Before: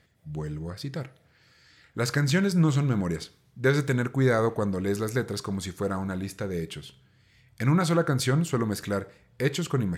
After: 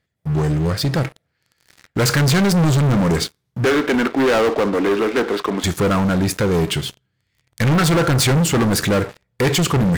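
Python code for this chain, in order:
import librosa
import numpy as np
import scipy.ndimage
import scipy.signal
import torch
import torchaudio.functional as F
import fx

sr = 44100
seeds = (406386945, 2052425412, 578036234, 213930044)

y = fx.ellip_bandpass(x, sr, low_hz=260.0, high_hz=3200.0, order=3, stop_db=40, at=(3.65, 5.64))
y = fx.leveller(y, sr, passes=5)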